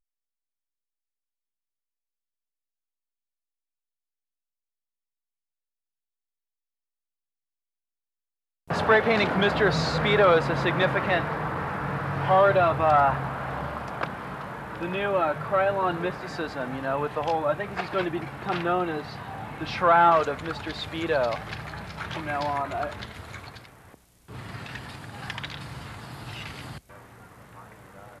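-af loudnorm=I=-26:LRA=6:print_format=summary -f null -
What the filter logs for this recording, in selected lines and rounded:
Input Integrated:    -25.3 LUFS
Input True Peak:      -8.8 dBTP
Input LRA:            17.0 LU
Input Threshold:     -37.0 LUFS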